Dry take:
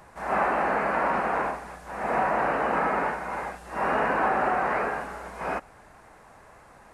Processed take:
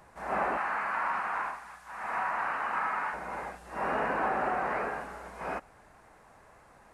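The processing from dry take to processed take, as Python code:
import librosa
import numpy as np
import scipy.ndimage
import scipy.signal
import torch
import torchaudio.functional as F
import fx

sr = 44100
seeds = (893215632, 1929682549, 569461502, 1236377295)

y = fx.low_shelf_res(x, sr, hz=740.0, db=-11.0, q=1.5, at=(0.57, 3.14))
y = y * librosa.db_to_amplitude(-5.5)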